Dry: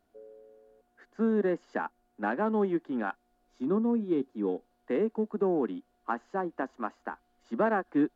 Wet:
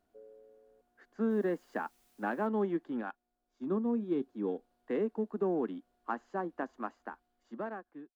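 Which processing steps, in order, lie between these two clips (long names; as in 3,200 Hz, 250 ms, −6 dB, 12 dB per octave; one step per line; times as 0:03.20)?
fade-out on the ending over 1.36 s
0:01.29–0:02.46: background noise white −67 dBFS
0:03.01–0:03.86: expander for the loud parts 1.5 to 1, over −43 dBFS
level −4 dB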